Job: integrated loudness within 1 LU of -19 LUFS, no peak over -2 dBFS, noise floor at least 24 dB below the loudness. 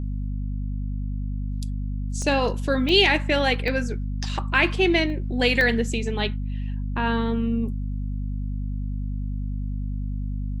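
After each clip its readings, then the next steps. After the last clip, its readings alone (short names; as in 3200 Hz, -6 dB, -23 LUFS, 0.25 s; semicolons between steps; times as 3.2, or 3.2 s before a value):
dropouts 5; longest dropout 1.1 ms; hum 50 Hz; harmonics up to 250 Hz; hum level -25 dBFS; loudness -24.5 LUFS; peak -4.5 dBFS; loudness target -19.0 LUFS
-> interpolate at 2.22/2.89/3.68/5.1/5.61, 1.1 ms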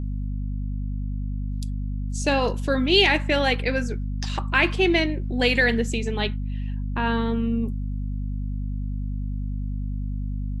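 dropouts 0; hum 50 Hz; harmonics up to 250 Hz; hum level -25 dBFS
-> notches 50/100/150/200/250 Hz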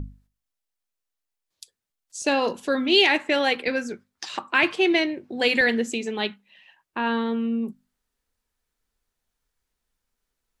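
hum none; loudness -22.5 LUFS; peak -6.0 dBFS; loudness target -19.0 LUFS
-> gain +3.5 dB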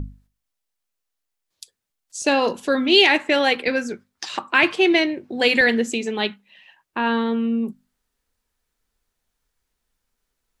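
loudness -19.0 LUFS; peak -2.5 dBFS; noise floor -80 dBFS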